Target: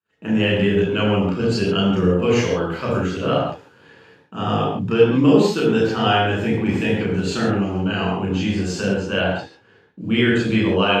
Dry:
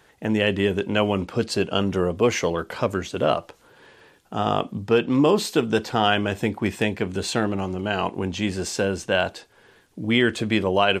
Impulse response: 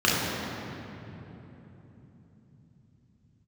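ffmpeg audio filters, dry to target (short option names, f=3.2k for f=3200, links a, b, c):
-filter_complex "[0:a]agate=range=-33dB:threshold=-53dB:ratio=16:detection=peak,asettb=1/sr,asplit=3[a][b][c];[a]atrim=end=8.964[d];[b]atrim=start=8.96:end=10.01,asetpts=PTS-STARTPTS,afade=t=in:d=0.004:c=qsin,afade=t=out:st=1.046:d=0.004:c=qsin,highshelf=f=7.5k:g=-11[e];[c]atrim=start=10.006[f];[d][e]acrossfade=d=0.004:c1=hsin:c2=qsin[g];[g][f]acrossfade=d=0.004:c1=qsin:c2=hsin[h];[1:a]atrim=start_sample=2205,afade=t=out:st=0.23:d=0.01,atrim=end_sample=10584[i];[h][i]afir=irnorm=-1:irlink=0,volume=-14.5dB"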